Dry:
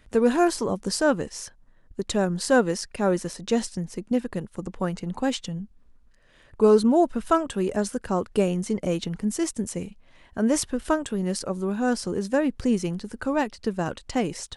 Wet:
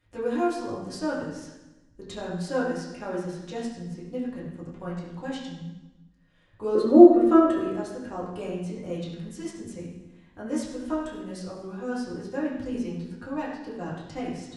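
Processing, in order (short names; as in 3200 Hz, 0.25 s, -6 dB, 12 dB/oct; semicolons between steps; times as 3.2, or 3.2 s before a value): 6.75–7.59 small resonant body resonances 360/530/1200/1800 Hz, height 17 dB, ringing for 35 ms; reverb RT60 1.0 s, pre-delay 5 ms, DRR -8.5 dB; gain -16.5 dB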